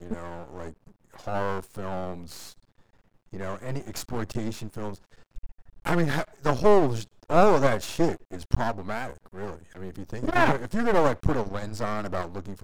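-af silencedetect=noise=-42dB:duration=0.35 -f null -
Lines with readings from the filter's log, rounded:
silence_start: 2.52
silence_end: 3.33 | silence_duration: 0.80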